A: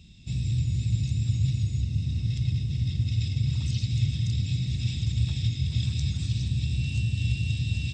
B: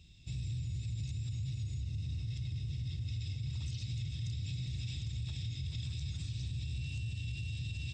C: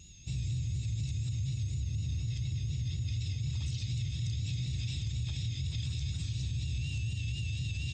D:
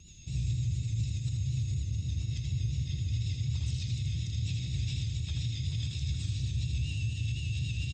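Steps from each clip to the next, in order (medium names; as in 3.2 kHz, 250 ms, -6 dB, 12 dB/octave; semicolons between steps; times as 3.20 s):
peaking EQ 210 Hz -9.5 dB 0.68 oct; peak limiter -25.5 dBFS, peak gain reduction 10 dB; trim -6 dB
whistle 6.6 kHz -60 dBFS; vibrato 4.1 Hz 50 cents; trim +4 dB
rotary cabinet horn 7.5 Hz; delay 80 ms -4.5 dB; trim +2 dB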